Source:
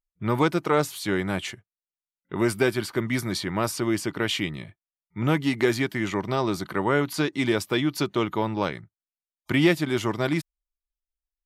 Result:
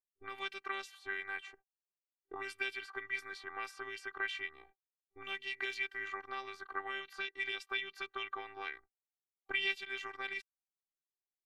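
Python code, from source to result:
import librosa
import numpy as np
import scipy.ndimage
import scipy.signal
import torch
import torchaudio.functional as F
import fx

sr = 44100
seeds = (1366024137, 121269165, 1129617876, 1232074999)

y = fx.peak_eq(x, sr, hz=61.0, db=9.0, octaves=2.1)
y = fx.auto_wah(y, sr, base_hz=500.0, top_hz=2800.0, q=2.7, full_db=-18.0, direction='up')
y = fx.robotise(y, sr, hz=391.0)
y = y * librosa.db_to_amplitude(-1.0)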